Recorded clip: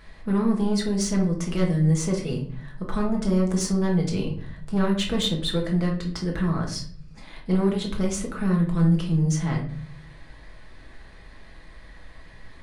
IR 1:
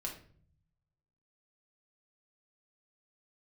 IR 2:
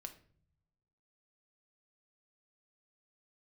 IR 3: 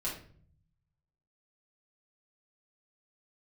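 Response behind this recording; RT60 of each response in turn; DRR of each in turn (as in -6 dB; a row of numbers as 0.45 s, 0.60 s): 1; 0.50 s, no single decay rate, 0.50 s; -1.0 dB, 6.0 dB, -7.0 dB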